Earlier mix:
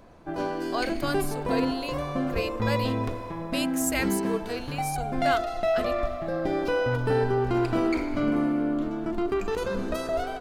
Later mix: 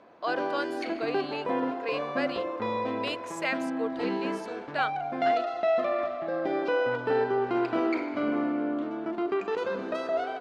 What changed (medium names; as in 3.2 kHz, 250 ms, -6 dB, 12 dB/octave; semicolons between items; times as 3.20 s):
speech: entry -0.50 s; master: add band-pass 310–3400 Hz